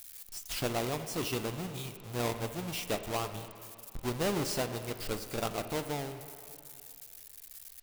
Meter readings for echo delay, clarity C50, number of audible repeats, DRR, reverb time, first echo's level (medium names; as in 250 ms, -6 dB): no echo, 9.5 dB, no echo, 8.0 dB, 2.5 s, no echo